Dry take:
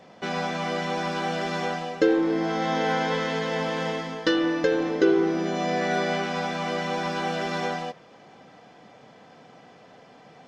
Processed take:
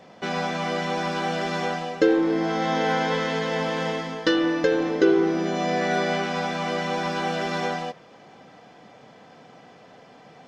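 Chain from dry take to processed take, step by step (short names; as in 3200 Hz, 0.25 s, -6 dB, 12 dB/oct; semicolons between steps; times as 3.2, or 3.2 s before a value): gain +1.5 dB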